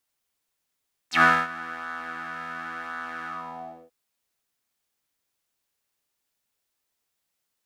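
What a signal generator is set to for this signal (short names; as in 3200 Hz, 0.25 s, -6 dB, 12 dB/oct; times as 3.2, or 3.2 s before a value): synth patch with pulse-width modulation E3, oscillator 2 square, interval +7 st, oscillator 2 level -1 dB, sub -8 dB, noise -12 dB, filter bandpass, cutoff 480 Hz, Q 5.6, filter envelope 4 oct, filter decay 0.06 s, attack 0.111 s, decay 0.25 s, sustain -20 dB, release 0.63 s, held 2.16 s, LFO 0.94 Hz, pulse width 25%, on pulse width 19%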